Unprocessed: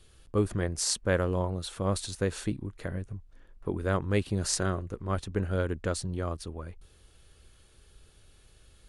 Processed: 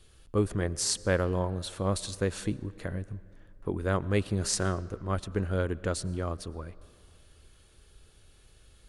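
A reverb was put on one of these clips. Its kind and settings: algorithmic reverb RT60 2.4 s, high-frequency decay 0.55×, pre-delay 70 ms, DRR 19.5 dB

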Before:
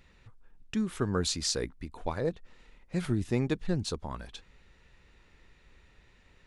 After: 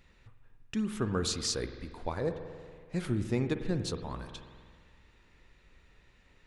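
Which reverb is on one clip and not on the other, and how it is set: spring tank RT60 1.9 s, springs 47 ms, chirp 75 ms, DRR 8 dB; trim -2 dB

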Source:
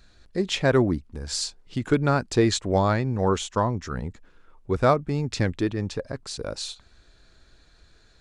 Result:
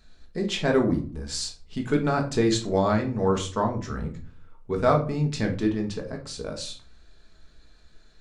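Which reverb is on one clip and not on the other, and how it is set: simulated room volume 290 m³, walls furnished, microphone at 1.5 m; trim -4 dB

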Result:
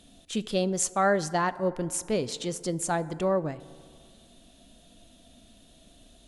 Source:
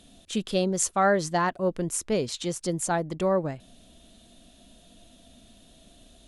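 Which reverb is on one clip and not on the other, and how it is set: FDN reverb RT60 2.2 s, low-frequency decay 0.8×, high-frequency decay 0.35×, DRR 15.5 dB; trim -1.5 dB

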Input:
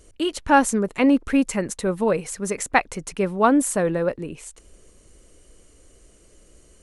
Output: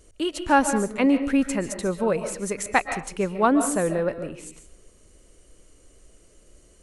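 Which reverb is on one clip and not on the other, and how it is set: algorithmic reverb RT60 0.43 s, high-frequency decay 0.65×, pre-delay 100 ms, DRR 8.5 dB; trim -2.5 dB

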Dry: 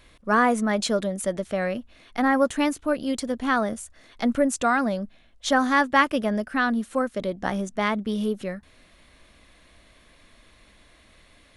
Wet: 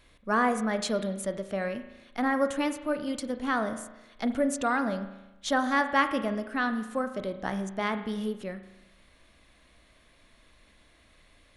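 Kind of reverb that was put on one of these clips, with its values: spring tank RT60 1 s, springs 36 ms, chirp 20 ms, DRR 9 dB; trim -5.5 dB

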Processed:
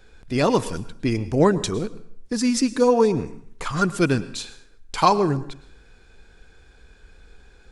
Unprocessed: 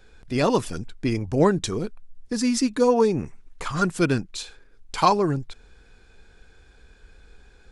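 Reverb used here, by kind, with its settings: plate-style reverb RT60 0.61 s, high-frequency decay 0.8×, pre-delay 95 ms, DRR 16 dB; trim +1.5 dB

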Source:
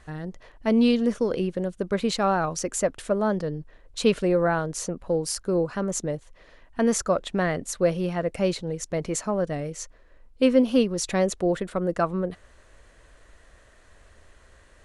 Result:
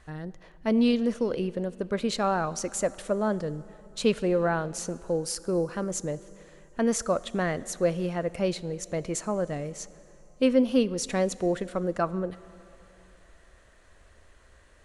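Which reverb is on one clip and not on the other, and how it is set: plate-style reverb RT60 3.2 s, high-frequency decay 0.8×, DRR 17.5 dB; trim -3 dB

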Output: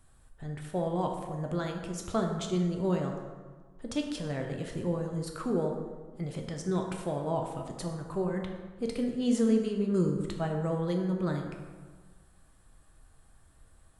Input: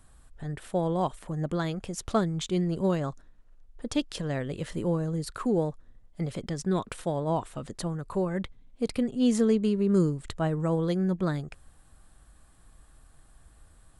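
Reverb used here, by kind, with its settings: plate-style reverb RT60 1.5 s, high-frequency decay 0.55×, DRR 2 dB; trim -5 dB

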